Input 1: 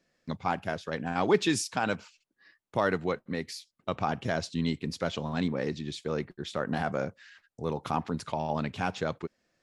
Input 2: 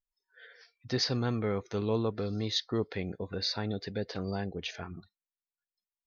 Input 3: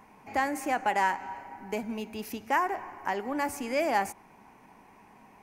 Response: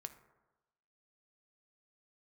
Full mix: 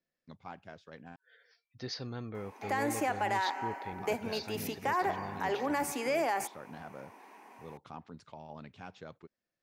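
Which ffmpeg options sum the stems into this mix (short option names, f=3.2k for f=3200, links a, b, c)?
-filter_complex "[0:a]lowpass=6.5k,volume=-16.5dB,asplit=3[a][b][c];[a]atrim=end=1.16,asetpts=PTS-STARTPTS,afade=t=out:st=1.156:d=0.004:c=hsin[d];[b]atrim=start=1.16:end=3.92,asetpts=PTS-STARTPTS,volume=0[e];[c]atrim=start=3.92,asetpts=PTS-STARTPTS,afade=t=in:d=0.004:c=hsin[f];[d][e][f]concat=n=3:v=0:a=1[g];[1:a]acontrast=52,adelay=900,volume=-16dB[h];[2:a]highpass=f=280:w=0.5412,highpass=f=280:w=1.3066,alimiter=level_in=0.5dB:limit=-24dB:level=0:latency=1:release=40,volume=-0.5dB,adelay=2350,volume=2dB[i];[g][h][i]amix=inputs=3:normalize=0"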